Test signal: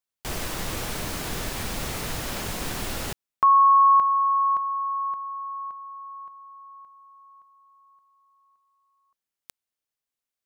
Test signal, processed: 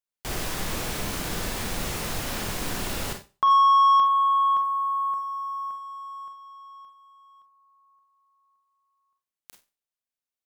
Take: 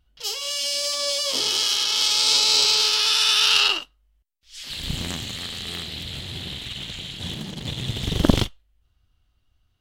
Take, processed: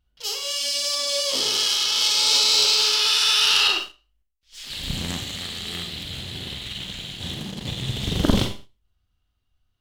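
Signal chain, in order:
four-comb reverb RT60 0.35 s, combs from 31 ms, DRR 4.5 dB
leveller curve on the samples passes 1
level −4.5 dB

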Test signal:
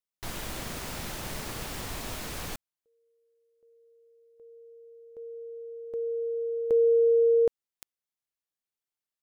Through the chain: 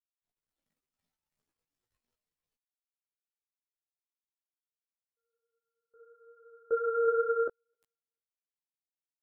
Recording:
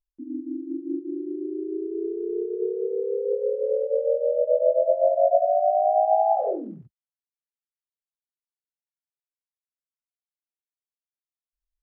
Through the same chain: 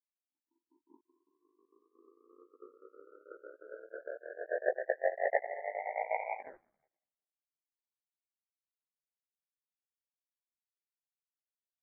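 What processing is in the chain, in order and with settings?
noise reduction from a noise print of the clip's start 11 dB
echo with a time of its own for lows and highs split 640 Hz, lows 351 ms, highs 256 ms, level −14 dB
power curve on the samples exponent 3
multi-voice chorus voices 4, 0.81 Hz, delay 16 ms, depth 4.7 ms

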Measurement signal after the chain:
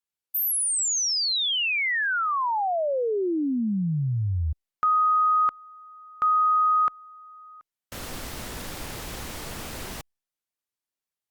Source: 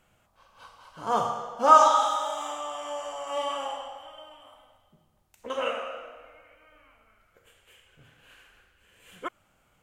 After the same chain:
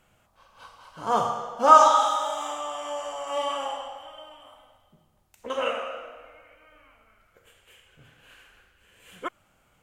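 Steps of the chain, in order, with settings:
level +2 dB
Opus 96 kbit/s 48,000 Hz

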